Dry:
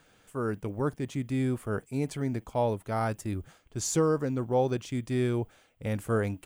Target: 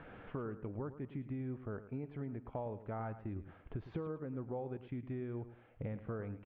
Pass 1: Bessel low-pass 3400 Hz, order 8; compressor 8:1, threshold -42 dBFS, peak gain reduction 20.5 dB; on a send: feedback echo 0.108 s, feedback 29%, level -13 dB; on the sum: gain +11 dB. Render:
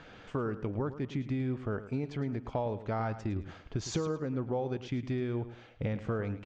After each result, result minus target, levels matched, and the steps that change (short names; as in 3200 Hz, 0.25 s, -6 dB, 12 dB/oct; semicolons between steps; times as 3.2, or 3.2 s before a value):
4000 Hz band +13.5 dB; compressor: peak gain reduction -8 dB
change: Bessel low-pass 1600 Hz, order 8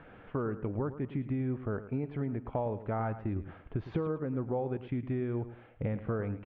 compressor: peak gain reduction -8.5 dB
change: compressor 8:1, threshold -51.5 dBFS, peak gain reduction 29 dB